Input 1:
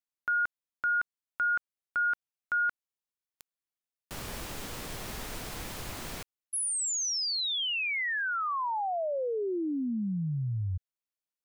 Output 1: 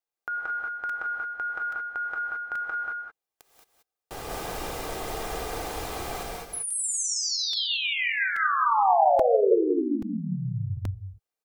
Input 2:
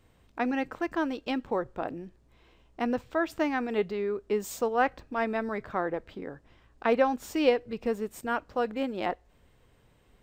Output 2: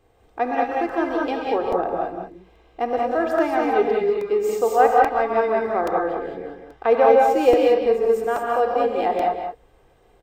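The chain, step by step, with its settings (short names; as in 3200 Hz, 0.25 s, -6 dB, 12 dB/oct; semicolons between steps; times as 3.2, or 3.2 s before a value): bell 620 Hz +11 dB 1.5 oct; comb 2.5 ms, depth 43%; on a send: echo 0.184 s -7 dB; on the sum: non-linear reverb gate 0.24 s rising, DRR -1 dB; crackling interface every 0.83 s, samples 128, repeat, from 0.89; gain -2.5 dB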